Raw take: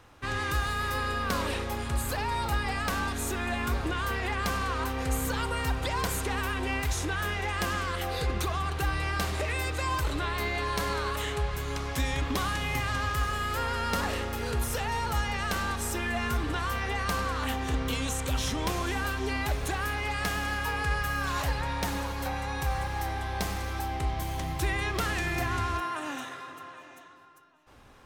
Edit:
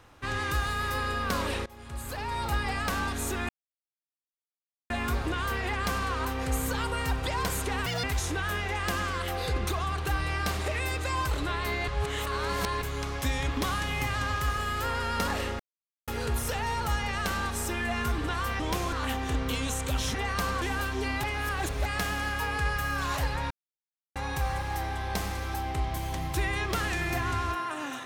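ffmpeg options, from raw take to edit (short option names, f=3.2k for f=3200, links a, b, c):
-filter_complex "[0:a]asplit=16[a][b][c][d][e][f][g][h][i][j][k][l][m][n][o][p];[a]atrim=end=1.66,asetpts=PTS-STARTPTS,afade=t=out:st=1.656:d=0.004:c=hsin:silence=0.0749894[q];[b]atrim=start=1.66:end=3.49,asetpts=PTS-STARTPTS,afade=t=in:d=0.89:silence=0.0749894,afade=t=out:st=1.826:d=0.004:c=hsin,apad=pad_dur=1.41[r];[c]atrim=start=3.49:end=6.454,asetpts=PTS-STARTPTS,afade=t=in:d=0.004:c=hsin[s];[d]atrim=start=6.45:end=6.77,asetpts=PTS-STARTPTS,asetrate=80262,aresample=44100[t];[e]atrim=start=6.766:end=10.612[u];[f]atrim=start=10.608:end=11.552,asetpts=PTS-STARTPTS,areverse[v];[g]atrim=start=11.548:end=14.33,asetpts=PTS-STARTPTS,afade=t=out:st=2.778:d=0.004:c=hsin,apad=pad_dur=0.48[w];[h]atrim=start=14.33:end=16.852,asetpts=PTS-STARTPTS,afade=t=in:d=0.004:c=hsin[x];[i]atrim=start=18.538:end=18.872[y];[j]atrim=start=17.318:end=18.542[z];[k]atrim=start=16.848:end=17.322[aa];[l]atrim=start=18.868:end=19.492[ab];[m]atrim=start=19.488:end=20.112,asetpts=PTS-STARTPTS,areverse[ac];[n]atrim=start=20.108:end=21.76,asetpts=PTS-STARTPTS,afade=t=out:st=1.648:d=0.004:c=hsin[ad];[o]atrim=start=21.76:end=22.41,asetpts=PTS-STARTPTS,volume=0[ae];[p]atrim=start=22.41,asetpts=PTS-STARTPTS,afade=t=in:d=0.004:c=hsin[af];[q][r][s]concat=n=3:v=0:a=1[ag];[ag][t]acrossfade=d=0.004:c1=hsin:c2=hsin[ah];[ah][u]acrossfade=d=0.004:c1=hsin:c2=hsin[ai];[ai][v]acrossfade=d=0.004:c1=hsin:c2=hsin[aj];[w][x]concat=n=2:v=0:a=1[ak];[aj][ak]acrossfade=d=0.004:c1=hsin:c2=hsin[al];[al][y]acrossfade=d=0.004:c1=hsin:c2=hsin[am];[am][z]acrossfade=d=0.004:c1=hsin:c2=hsin[an];[an][aa]acrossfade=d=0.004:c1=hsin:c2=hsin[ao];[ao][ab]acrossfade=d=0.004:c1=hsin:c2=hsin[ap];[ap][ac]acrossfade=d=0.004:c1=hsin:c2=hsin[aq];[ad][ae][af]concat=n=3:v=0:a=1[ar];[aq][ar]acrossfade=d=0.004:c1=hsin:c2=hsin"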